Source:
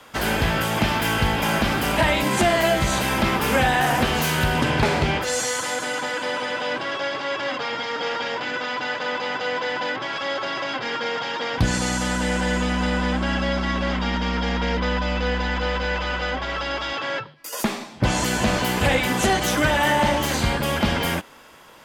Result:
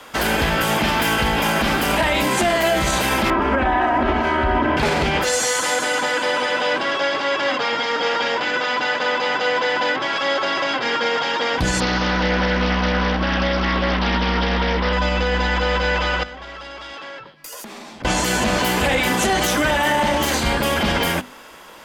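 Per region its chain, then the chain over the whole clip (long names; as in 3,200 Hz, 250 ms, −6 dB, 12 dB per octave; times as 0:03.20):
0:03.30–0:04.77: low-pass filter 1,600 Hz + comb filter 3.1 ms, depth 85%
0:11.80–0:14.93: Butterworth low-pass 5,500 Hz 96 dB per octave + highs frequency-modulated by the lows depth 0.23 ms
0:16.23–0:18.05: downward compressor 8 to 1, threshold −35 dBFS + tube saturation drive 27 dB, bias 0.5
whole clip: parametric band 110 Hz −7.5 dB 0.74 octaves; mains-hum notches 50/100/150/200/250 Hz; boost into a limiter +15 dB; level −9 dB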